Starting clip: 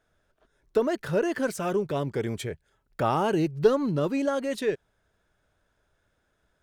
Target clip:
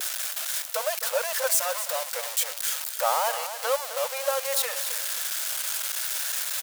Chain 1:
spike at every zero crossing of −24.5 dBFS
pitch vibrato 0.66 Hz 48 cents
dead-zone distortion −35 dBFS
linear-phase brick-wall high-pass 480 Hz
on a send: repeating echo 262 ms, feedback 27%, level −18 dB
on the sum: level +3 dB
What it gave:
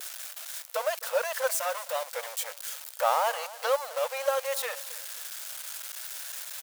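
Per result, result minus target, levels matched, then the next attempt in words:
echo-to-direct −7 dB; spike at every zero crossing: distortion −6 dB
spike at every zero crossing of −24.5 dBFS
pitch vibrato 0.66 Hz 48 cents
dead-zone distortion −35 dBFS
linear-phase brick-wall high-pass 480 Hz
on a send: repeating echo 262 ms, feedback 27%, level −11 dB
on the sum: level +3 dB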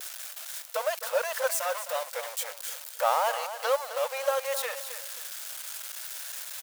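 spike at every zero crossing: distortion −6 dB
spike at every zero crossing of −18 dBFS
pitch vibrato 0.66 Hz 48 cents
dead-zone distortion −35 dBFS
linear-phase brick-wall high-pass 480 Hz
on a send: repeating echo 262 ms, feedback 27%, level −11 dB
on the sum: level +3 dB

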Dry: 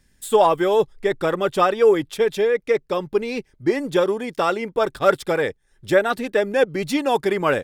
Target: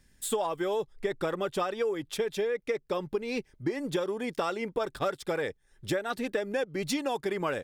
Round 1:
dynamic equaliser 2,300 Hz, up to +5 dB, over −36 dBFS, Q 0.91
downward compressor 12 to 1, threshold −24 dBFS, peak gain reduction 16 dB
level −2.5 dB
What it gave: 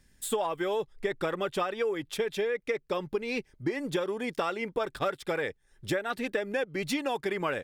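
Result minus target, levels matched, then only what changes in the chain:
2,000 Hz band +2.5 dB
change: dynamic equaliser 5,900 Hz, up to +5 dB, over −36 dBFS, Q 0.91

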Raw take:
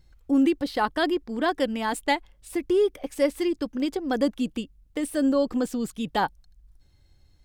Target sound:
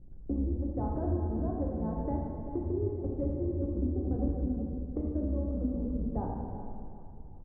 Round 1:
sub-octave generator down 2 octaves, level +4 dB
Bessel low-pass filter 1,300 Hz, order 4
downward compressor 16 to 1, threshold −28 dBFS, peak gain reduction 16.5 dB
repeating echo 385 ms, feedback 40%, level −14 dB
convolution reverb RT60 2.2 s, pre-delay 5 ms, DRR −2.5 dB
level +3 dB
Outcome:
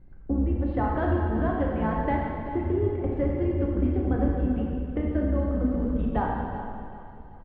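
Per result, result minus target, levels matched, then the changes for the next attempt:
downward compressor: peak gain reduction −6 dB; 1,000 Hz band +5.5 dB
change: downward compressor 16 to 1, threshold −35 dBFS, peak gain reduction 23 dB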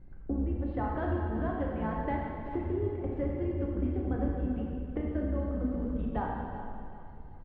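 1,000 Hz band +5.5 dB
change: Bessel low-pass filter 490 Hz, order 4

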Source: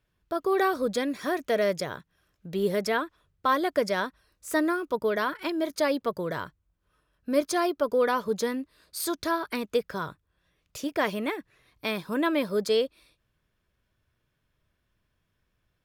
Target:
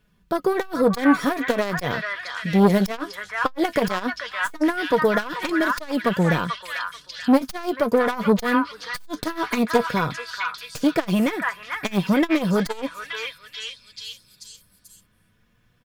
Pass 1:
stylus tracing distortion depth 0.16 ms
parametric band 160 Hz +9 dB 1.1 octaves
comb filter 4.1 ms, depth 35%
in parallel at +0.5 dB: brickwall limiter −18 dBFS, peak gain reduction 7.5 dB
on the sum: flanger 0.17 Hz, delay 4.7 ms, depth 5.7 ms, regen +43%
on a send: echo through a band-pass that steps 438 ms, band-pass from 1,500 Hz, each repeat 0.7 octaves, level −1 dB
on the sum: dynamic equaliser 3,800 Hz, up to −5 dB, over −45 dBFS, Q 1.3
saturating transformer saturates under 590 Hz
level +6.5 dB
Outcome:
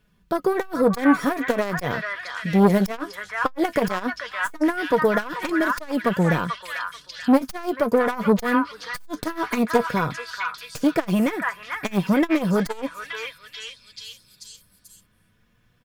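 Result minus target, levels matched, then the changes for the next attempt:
4,000 Hz band −3.5 dB
remove: dynamic equaliser 3,800 Hz, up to −5 dB, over −45 dBFS, Q 1.3

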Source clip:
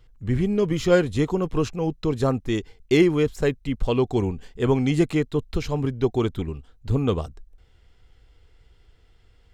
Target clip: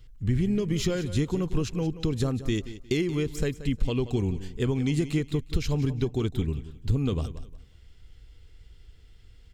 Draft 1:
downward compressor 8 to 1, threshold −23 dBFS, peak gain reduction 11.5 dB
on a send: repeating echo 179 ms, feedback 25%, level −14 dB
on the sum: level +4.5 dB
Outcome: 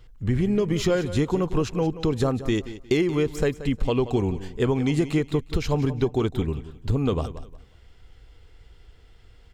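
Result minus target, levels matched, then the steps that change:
1,000 Hz band +6.5 dB
add after downward compressor: parametric band 810 Hz −11 dB 2.3 octaves

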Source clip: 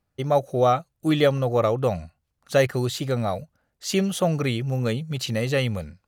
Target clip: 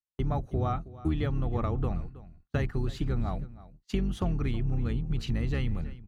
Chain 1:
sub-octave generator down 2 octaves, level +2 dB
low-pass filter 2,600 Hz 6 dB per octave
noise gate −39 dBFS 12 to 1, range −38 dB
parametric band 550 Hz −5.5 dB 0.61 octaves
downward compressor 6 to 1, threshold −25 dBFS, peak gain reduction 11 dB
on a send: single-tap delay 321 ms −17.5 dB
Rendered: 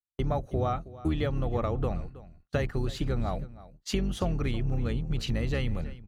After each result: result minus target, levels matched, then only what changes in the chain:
500 Hz band +3.5 dB; 2,000 Hz band +2.5 dB
change: parametric band 550 Hz −14 dB 0.61 octaves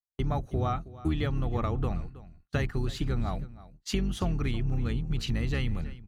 2,000 Hz band +3.5 dB
change: low-pass filter 1,200 Hz 6 dB per octave

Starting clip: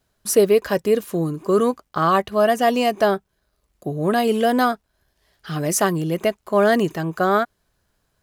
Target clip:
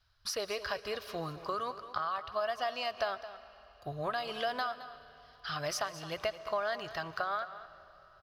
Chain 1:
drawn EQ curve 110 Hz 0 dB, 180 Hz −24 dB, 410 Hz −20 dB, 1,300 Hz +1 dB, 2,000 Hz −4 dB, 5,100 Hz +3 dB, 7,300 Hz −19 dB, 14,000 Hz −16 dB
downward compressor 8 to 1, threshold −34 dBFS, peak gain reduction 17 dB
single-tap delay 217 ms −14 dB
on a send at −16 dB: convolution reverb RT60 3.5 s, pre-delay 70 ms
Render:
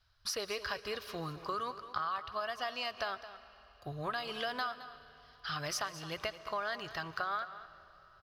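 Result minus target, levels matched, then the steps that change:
500 Hz band −3.0 dB
add after downward compressor: dynamic equaliser 630 Hz, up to +7 dB, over −53 dBFS, Q 2.2

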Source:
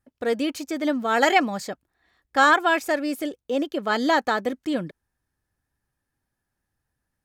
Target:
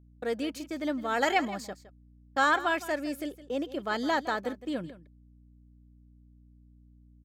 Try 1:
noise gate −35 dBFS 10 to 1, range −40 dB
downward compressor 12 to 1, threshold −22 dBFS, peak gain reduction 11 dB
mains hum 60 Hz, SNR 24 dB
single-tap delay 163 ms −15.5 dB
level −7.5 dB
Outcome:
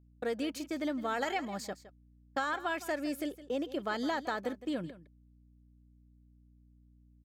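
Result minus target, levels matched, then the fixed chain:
downward compressor: peak gain reduction +11 dB
noise gate −35 dBFS 10 to 1, range −40 dB
mains hum 60 Hz, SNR 24 dB
single-tap delay 163 ms −15.5 dB
level −7.5 dB

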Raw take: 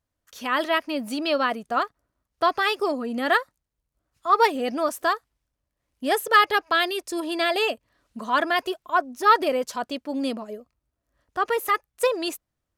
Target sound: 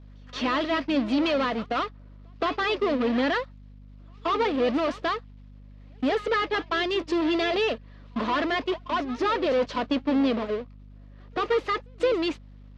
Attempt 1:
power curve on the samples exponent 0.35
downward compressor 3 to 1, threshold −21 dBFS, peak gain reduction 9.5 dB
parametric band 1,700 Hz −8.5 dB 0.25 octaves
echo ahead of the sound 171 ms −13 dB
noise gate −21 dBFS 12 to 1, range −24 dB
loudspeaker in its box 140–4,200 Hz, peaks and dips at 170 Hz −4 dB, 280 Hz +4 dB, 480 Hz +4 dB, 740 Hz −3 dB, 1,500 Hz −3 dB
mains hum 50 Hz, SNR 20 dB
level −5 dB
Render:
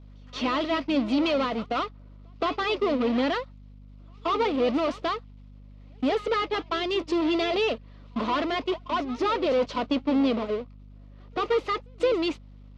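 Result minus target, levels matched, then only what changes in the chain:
2,000 Hz band −3.0 dB
remove: parametric band 1,700 Hz −8.5 dB 0.25 octaves

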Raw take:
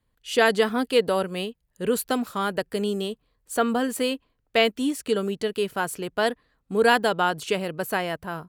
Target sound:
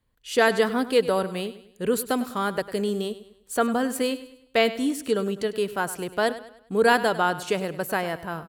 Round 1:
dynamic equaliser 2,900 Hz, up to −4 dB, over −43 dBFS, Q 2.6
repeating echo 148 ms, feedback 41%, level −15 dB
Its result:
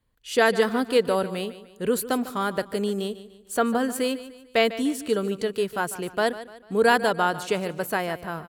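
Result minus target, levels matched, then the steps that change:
echo 47 ms late
change: repeating echo 101 ms, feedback 41%, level −15 dB

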